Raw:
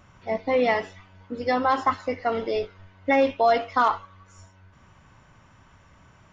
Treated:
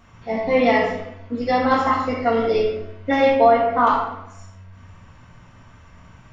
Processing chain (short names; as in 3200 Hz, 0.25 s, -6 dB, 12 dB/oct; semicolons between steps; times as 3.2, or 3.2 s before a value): 3.44–3.87 LPF 1700 Hz 12 dB/oct; shoebox room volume 250 m³, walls mixed, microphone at 1.7 m